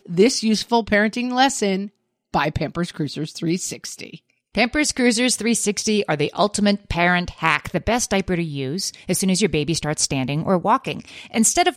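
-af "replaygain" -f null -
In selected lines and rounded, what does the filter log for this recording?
track_gain = +0.2 dB
track_peak = 0.496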